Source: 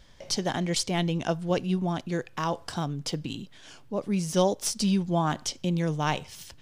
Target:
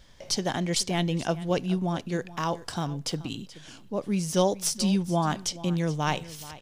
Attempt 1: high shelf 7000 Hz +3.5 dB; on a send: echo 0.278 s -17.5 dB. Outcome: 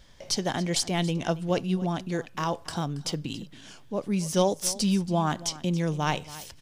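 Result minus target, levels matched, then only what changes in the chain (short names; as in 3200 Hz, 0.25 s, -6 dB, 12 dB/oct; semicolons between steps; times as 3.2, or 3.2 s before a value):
echo 0.15 s early
change: echo 0.428 s -17.5 dB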